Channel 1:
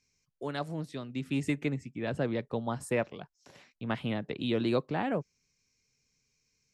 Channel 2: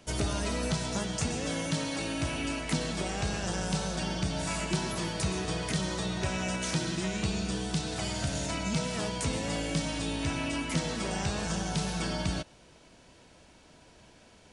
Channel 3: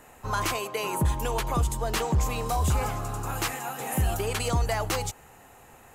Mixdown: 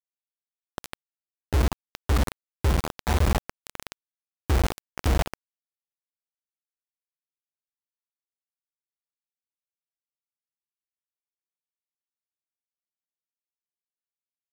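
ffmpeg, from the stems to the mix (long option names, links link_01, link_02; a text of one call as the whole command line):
ffmpeg -i stem1.wav -i stem2.wav -i stem3.wav -filter_complex "[0:a]highpass=510,alimiter=level_in=1.5dB:limit=-24dB:level=0:latency=1:release=283,volume=-1.5dB,volume=-3.5dB,asplit=3[link_01][link_02][link_03];[link_02]volume=-22dB[link_04];[1:a]firequalizer=gain_entry='entry(380,0);entry(550,-7);entry(6500,7)':delay=0.05:min_phase=1,asoftclip=type=tanh:threshold=-30dB,adelay=1050,volume=-10dB[link_05];[2:a]lowpass=1100,adelay=500,volume=1.5dB,asplit=2[link_06][link_07];[link_07]volume=-5dB[link_08];[link_03]apad=whole_len=691386[link_09];[link_05][link_09]sidechaincompress=threshold=-44dB:ratio=12:attack=32:release=587[link_10];[link_04][link_08]amix=inputs=2:normalize=0,aecho=0:1:83:1[link_11];[link_01][link_10][link_06][link_11]amix=inputs=4:normalize=0,acrossover=split=120[link_12][link_13];[link_13]acompressor=threshold=-36dB:ratio=8[link_14];[link_12][link_14]amix=inputs=2:normalize=0,acrusher=bits=3:mix=0:aa=0.000001" out.wav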